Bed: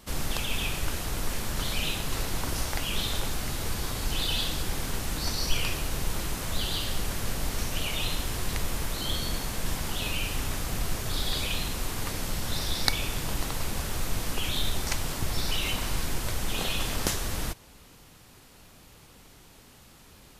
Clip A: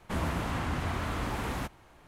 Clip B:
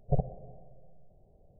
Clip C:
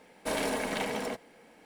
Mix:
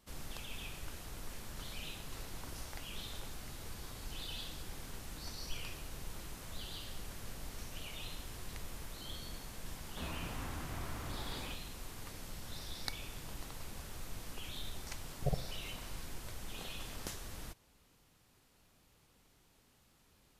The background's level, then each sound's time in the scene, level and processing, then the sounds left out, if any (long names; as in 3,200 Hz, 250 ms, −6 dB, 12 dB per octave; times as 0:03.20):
bed −15.5 dB
0:09.87: mix in A −12.5 dB
0:15.14: mix in B −7 dB
not used: C